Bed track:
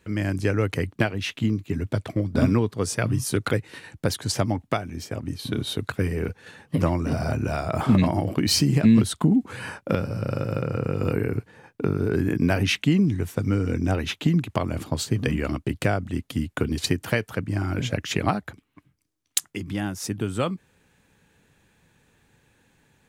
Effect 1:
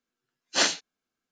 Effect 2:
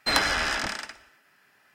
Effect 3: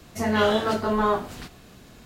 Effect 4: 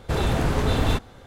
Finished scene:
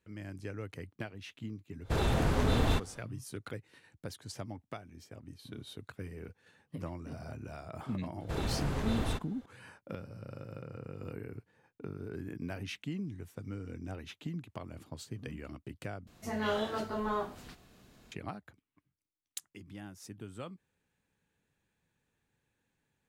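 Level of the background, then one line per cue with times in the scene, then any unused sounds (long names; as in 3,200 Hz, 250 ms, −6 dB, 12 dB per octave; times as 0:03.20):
bed track −18.5 dB
0:01.81: mix in 4 −6.5 dB, fades 0.10 s
0:08.20: mix in 4 −12 dB
0:16.07: overwrite with 3 −11.5 dB
not used: 1, 2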